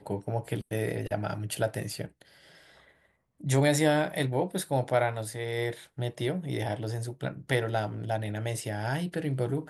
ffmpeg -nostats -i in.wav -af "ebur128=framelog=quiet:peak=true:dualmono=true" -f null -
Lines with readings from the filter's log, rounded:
Integrated loudness:
  I:         -27.5 LUFS
  Threshold: -38.0 LUFS
Loudness range:
  LRA:         5.1 LU
  Threshold: -47.6 LUFS
  LRA low:   -30.7 LUFS
  LRA high:  -25.5 LUFS
True peak:
  Peak:      -11.8 dBFS